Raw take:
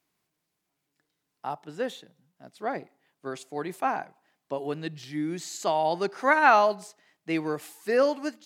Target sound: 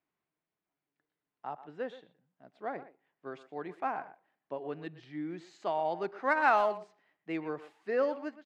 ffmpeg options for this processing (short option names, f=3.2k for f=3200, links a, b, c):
-filter_complex "[0:a]bass=f=250:g=-4,treble=f=4k:g=-13,adynamicsmooth=sensitivity=2:basefreq=5.1k,asplit=2[a][b];[b]adelay=120,highpass=300,lowpass=3.4k,asoftclip=type=hard:threshold=-15.5dB,volume=-14dB[c];[a][c]amix=inputs=2:normalize=0,volume=-6.5dB"